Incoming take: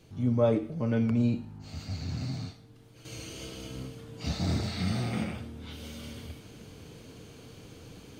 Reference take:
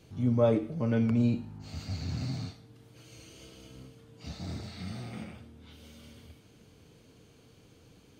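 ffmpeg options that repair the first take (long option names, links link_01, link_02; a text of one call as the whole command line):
ffmpeg -i in.wav -af "adeclick=threshold=4,agate=range=-21dB:threshold=-42dB,asetnsamples=nb_out_samples=441:pad=0,asendcmd='3.05 volume volume -9.5dB',volume=0dB" out.wav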